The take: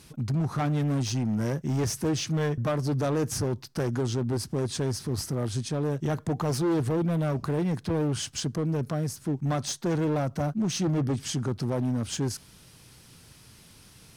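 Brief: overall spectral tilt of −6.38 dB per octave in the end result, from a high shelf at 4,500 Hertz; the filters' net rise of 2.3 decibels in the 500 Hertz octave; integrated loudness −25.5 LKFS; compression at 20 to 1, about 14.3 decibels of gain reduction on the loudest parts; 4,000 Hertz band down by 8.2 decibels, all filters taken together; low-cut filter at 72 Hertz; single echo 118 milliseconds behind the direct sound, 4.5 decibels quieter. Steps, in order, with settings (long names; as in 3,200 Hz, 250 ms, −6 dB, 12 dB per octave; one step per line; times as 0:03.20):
high-pass filter 72 Hz
parametric band 500 Hz +3 dB
parametric band 4,000 Hz −6 dB
high-shelf EQ 4,500 Hz −8.5 dB
downward compressor 20 to 1, threshold −36 dBFS
single-tap delay 118 ms −4.5 dB
level +14.5 dB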